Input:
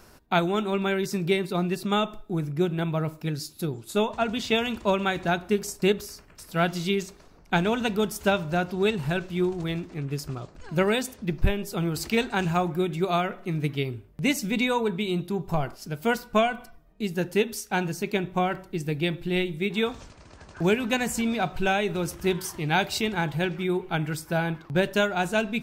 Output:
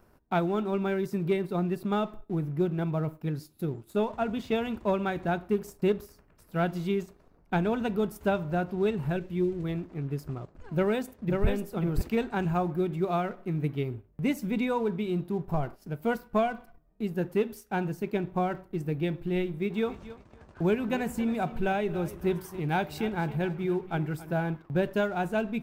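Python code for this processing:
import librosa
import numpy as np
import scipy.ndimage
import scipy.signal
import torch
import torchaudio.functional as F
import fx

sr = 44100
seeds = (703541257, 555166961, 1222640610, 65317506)

y = fx.band_shelf(x, sr, hz=1000.0, db=-13.5, octaves=1.2, at=(9.16, 9.64))
y = fx.echo_throw(y, sr, start_s=10.73, length_s=0.74, ms=540, feedback_pct=10, wet_db=-4.0)
y = fx.echo_feedback(y, sr, ms=275, feedback_pct=23, wet_db=-15.5, at=(19.84, 24.33), fade=0.02)
y = fx.peak_eq(y, sr, hz=5800.0, db=-14.5, octaves=2.7)
y = fx.leveller(y, sr, passes=1)
y = y * librosa.db_to_amplitude(-5.5)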